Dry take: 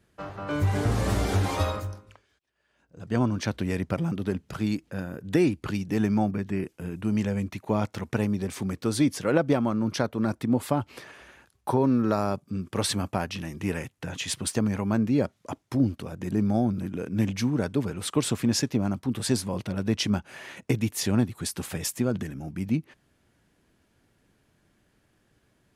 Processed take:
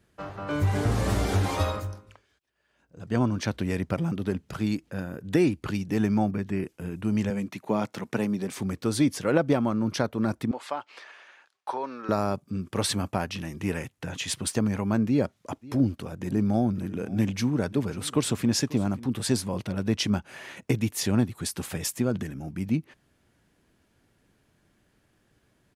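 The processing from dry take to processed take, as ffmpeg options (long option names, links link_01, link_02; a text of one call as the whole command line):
ffmpeg -i in.wav -filter_complex "[0:a]asettb=1/sr,asplit=3[link_01][link_02][link_03];[link_01]atrim=end=7.304[link_04];[link_02]atrim=start=7.3:end=8.57,asetpts=PTS-STARTPTS,afade=type=in:duration=0.004:curve=qsin,afade=type=out:start_time=1.266:duration=0.004:curve=qsin,highpass=frequency=140:width=0.5412,highpass=frequency=140:width=1.3066[link_05];[link_03]atrim=start=8.566[link_06];[link_04][link_05]acrossfade=duration=0.004:curve1=hsin:curve2=qsin[link_07];[link_07][link_06]acrossfade=duration=0.004:curve1=qsin:curve2=hsin,asettb=1/sr,asplit=3[link_08][link_09][link_10];[link_08]atrim=end=10.514[link_11];[link_09]atrim=start=10.51:end=12.09,asetpts=PTS-STARTPTS,afade=type=in:duration=0.004:curve=qsin,afade=type=out:start_time=1.576:duration=0.004:curve=qsin,highpass=750,lowpass=5400[link_12];[link_10]atrim=start=12.086[link_13];[link_11][link_12]acrossfade=duration=0.004:curve1=hsin:curve2=qsin[link_14];[link_14][link_13]acrossfade=duration=0.004:curve1=qsin:curve2=hsin,asplit=3[link_15][link_16][link_17];[link_15]afade=type=out:start_time=15.61:duration=0.02[link_18];[link_16]aecho=1:1:541:0.1,afade=type=in:start_time=15.61:duration=0.02,afade=type=out:start_time=19.06:duration=0.02[link_19];[link_17]afade=type=in:start_time=19.06:duration=0.02[link_20];[link_18][link_19][link_20]amix=inputs=3:normalize=0" out.wav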